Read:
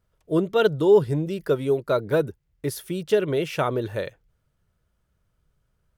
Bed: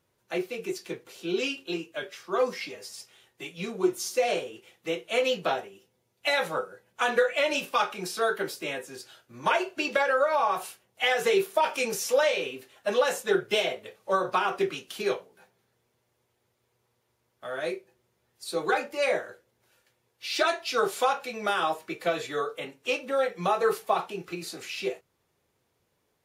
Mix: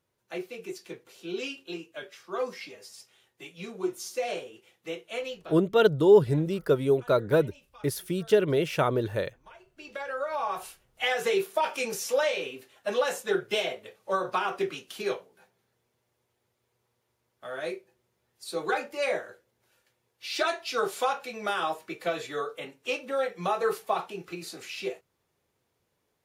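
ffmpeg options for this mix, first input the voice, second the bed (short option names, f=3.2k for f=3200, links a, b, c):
-filter_complex "[0:a]adelay=5200,volume=-1dB[a];[1:a]volume=19.5dB,afade=t=out:st=4.99:d=0.63:silence=0.0794328,afade=t=in:st=9.67:d=1.12:silence=0.0562341[b];[a][b]amix=inputs=2:normalize=0"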